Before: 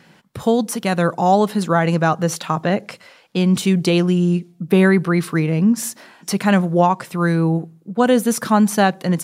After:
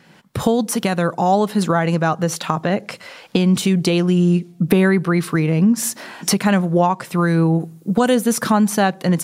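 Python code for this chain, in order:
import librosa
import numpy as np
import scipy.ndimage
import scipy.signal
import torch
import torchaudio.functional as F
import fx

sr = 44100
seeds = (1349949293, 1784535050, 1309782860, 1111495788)

y = fx.recorder_agc(x, sr, target_db=-6.5, rise_db_per_s=24.0, max_gain_db=30)
y = fx.high_shelf(y, sr, hz=4700.0, db=11.5, at=(7.6, 8.15))
y = F.gain(torch.from_numpy(y), -1.5).numpy()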